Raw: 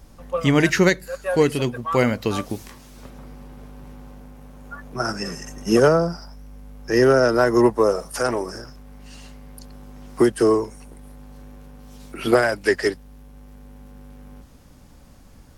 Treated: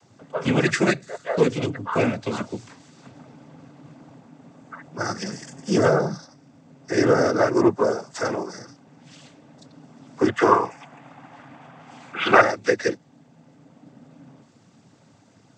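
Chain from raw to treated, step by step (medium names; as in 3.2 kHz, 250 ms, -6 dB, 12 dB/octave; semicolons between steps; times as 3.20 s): 10.28–12.41 s: high-order bell 1.4 kHz +13 dB 2.4 oct; noise-vocoded speech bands 16; trim -2.5 dB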